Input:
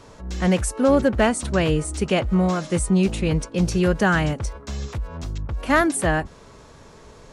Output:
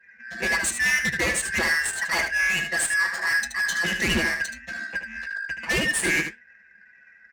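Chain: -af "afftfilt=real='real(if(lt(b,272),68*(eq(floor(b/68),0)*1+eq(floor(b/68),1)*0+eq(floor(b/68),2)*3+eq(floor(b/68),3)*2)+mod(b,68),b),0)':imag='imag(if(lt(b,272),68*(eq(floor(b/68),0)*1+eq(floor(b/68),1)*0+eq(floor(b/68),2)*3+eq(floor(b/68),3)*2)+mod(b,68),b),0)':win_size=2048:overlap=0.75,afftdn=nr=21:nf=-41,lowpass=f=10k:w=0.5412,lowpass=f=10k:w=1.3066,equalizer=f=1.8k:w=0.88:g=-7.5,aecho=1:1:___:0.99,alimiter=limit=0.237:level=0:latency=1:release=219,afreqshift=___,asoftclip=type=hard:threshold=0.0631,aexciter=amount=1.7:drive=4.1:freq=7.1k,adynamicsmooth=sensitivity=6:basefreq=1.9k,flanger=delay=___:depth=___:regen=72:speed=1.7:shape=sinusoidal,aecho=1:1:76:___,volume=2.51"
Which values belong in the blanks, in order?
6.3, 36, 7.2, 3.7, 0.398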